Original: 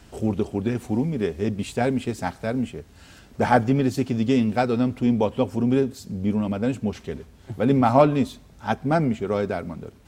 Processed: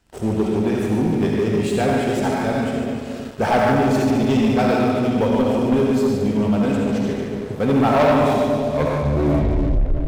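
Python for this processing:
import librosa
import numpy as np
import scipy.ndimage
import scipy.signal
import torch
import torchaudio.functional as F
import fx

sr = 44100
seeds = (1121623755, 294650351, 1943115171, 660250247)

y = fx.tape_stop_end(x, sr, length_s=1.88)
y = fx.hum_notches(y, sr, base_hz=60, count=5)
y = fx.echo_split(y, sr, split_hz=640.0, low_ms=325, high_ms=146, feedback_pct=52, wet_db=-7.0)
y = fx.rev_freeverb(y, sr, rt60_s=1.2, hf_ratio=0.7, predelay_ms=30, drr_db=-1.0)
y = fx.leveller(y, sr, passes=3)
y = y * 10.0 ** (-8.5 / 20.0)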